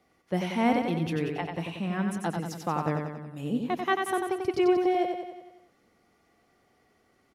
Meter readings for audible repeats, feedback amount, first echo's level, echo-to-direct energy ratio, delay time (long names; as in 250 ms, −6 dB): 6, 56%, −5.0 dB, −3.5 dB, 92 ms